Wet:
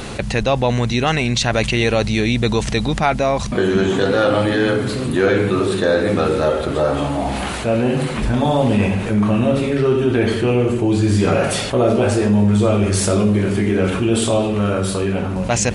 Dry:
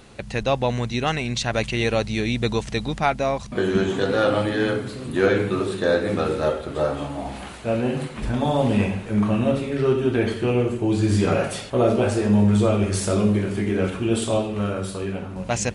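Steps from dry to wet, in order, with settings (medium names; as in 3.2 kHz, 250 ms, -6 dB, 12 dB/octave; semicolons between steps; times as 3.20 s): level flattener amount 50%; trim +2 dB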